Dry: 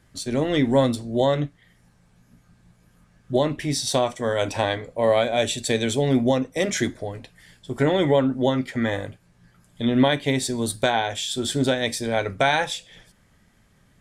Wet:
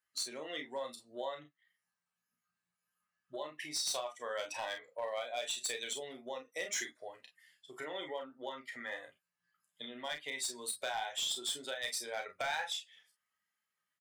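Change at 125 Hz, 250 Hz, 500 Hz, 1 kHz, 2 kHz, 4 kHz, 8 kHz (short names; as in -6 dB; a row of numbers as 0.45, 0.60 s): -39.5, -30.0, -20.0, -16.0, -13.0, -10.5, -8.0 dB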